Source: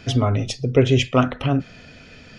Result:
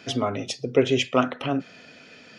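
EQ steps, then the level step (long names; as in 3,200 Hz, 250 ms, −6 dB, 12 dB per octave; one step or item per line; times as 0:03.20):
high-pass filter 240 Hz 12 dB per octave
−2.0 dB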